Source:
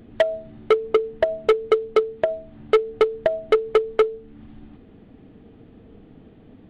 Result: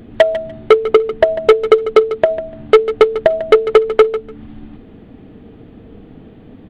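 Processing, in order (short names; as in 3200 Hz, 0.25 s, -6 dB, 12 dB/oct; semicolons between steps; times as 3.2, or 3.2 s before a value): feedback echo 0.147 s, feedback 19%, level -14 dB; gain +8.5 dB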